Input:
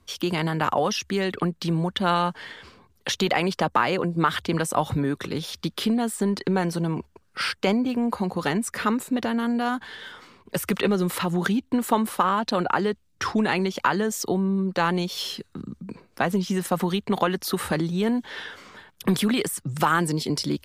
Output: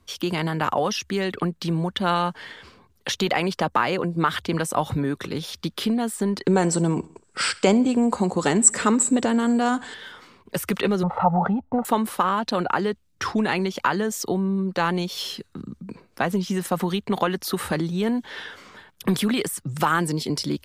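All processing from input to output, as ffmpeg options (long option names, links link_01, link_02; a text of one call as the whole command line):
ffmpeg -i in.wav -filter_complex "[0:a]asettb=1/sr,asplit=3[link_01][link_02][link_03];[link_01]atrim=end=6.474[link_04];[link_02]atrim=start=6.47:end=9.94,asetpts=PTS-STARTPTS,afade=type=in:duration=0.004:curve=qsin,afade=type=out:start_time=3.466:duration=0.004:curve=qsin,lowpass=frequency=7800:width_type=q:width=16,equalizer=frequency=390:width=0.51:gain=5.5,aecho=1:1:66|132|198:0.0841|0.0412|0.0202,atrim=end_sample=153027[link_05];[link_03]atrim=start=9.936[link_06];[link_04][link_05]acrossfade=duration=0.004:curve1=hsin:curve2=qsin[link_07];[link_07][link_06]acrossfade=duration=0.004:curve1=qsin:curve2=hsin,asettb=1/sr,asplit=3[link_08][link_09][link_10];[link_08]atrim=end=11.034[link_11];[link_09]atrim=start=11.03:end=11.85,asetpts=PTS-STARTPTS,afade=type=in:duration=0.004:curve=qsin,afade=type=out:start_time=0.816:duration=0.004:curve=qsin,lowpass=frequency=890:width_type=q:width=6.9,aecho=1:1:1.5:0.84,atrim=end_sample=36162[link_12];[link_10]atrim=start=11.846[link_13];[link_11][link_12]acrossfade=duration=0.004:curve1=hsin:curve2=qsin[link_14];[link_14][link_13]acrossfade=duration=0.004:curve1=qsin:curve2=hsin" out.wav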